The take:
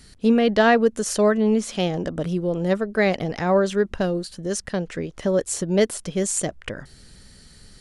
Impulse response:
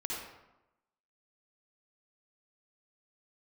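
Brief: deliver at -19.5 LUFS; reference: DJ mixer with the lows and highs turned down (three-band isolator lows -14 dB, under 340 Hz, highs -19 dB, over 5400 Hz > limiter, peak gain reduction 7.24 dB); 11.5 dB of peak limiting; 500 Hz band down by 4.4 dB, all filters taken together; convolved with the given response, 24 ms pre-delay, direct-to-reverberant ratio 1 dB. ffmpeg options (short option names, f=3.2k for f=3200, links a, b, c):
-filter_complex "[0:a]equalizer=f=500:t=o:g=-3.5,alimiter=limit=-18.5dB:level=0:latency=1,asplit=2[a][b];[1:a]atrim=start_sample=2205,adelay=24[c];[b][c]afir=irnorm=-1:irlink=0,volume=-4dB[d];[a][d]amix=inputs=2:normalize=0,acrossover=split=340 5400:gain=0.2 1 0.112[e][f][g];[e][f][g]amix=inputs=3:normalize=0,volume=12.5dB,alimiter=limit=-9dB:level=0:latency=1"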